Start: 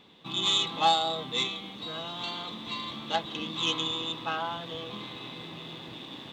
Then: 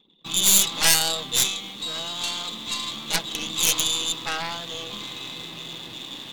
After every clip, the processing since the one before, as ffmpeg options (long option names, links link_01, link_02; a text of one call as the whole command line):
ffmpeg -i in.wav -af "anlmdn=0.00158,aeval=exprs='0.282*(cos(1*acos(clip(val(0)/0.282,-1,1)))-cos(1*PI/2))+0.0562*(cos(3*acos(clip(val(0)/0.282,-1,1)))-cos(3*PI/2))+0.141*(cos(6*acos(clip(val(0)/0.282,-1,1)))-cos(6*PI/2))+0.112*(cos(7*acos(clip(val(0)/0.282,-1,1)))-cos(7*PI/2))':channel_layout=same,crystalizer=i=4:c=0,volume=-7dB" out.wav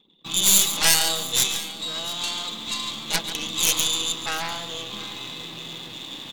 ffmpeg -i in.wav -af "aecho=1:1:140|694:0.266|0.126" out.wav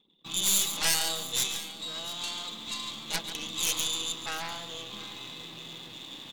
ffmpeg -i in.wav -af "asoftclip=type=tanh:threshold=-7.5dB,volume=-7dB" out.wav